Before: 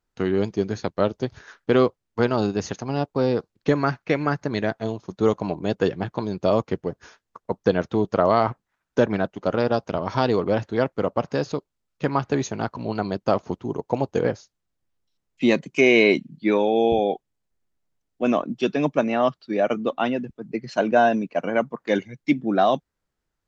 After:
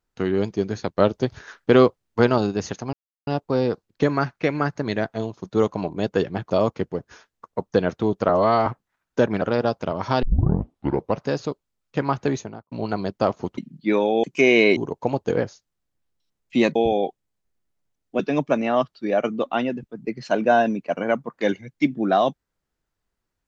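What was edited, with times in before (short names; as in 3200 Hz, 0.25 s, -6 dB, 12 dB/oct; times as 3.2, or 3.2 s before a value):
0.98–2.38 gain +3.5 dB
2.93 insert silence 0.34 s
6.16–6.42 cut
8.21–8.46 stretch 1.5×
9.21–9.48 cut
10.29 tape start 0.99 s
12.34–12.78 studio fade out
13.64–15.63 swap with 16.16–16.82
18.26–18.66 cut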